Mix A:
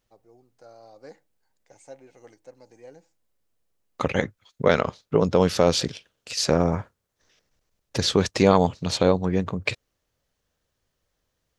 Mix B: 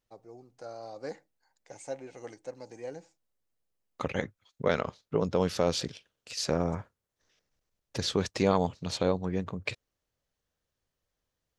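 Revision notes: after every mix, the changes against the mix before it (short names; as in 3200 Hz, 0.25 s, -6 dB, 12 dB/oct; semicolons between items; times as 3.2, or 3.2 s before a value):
first voice +6.0 dB; second voice -8.0 dB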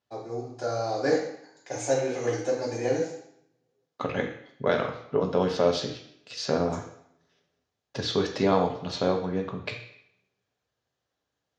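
second voice: add BPF 110–4400 Hz; reverb: on, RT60 0.70 s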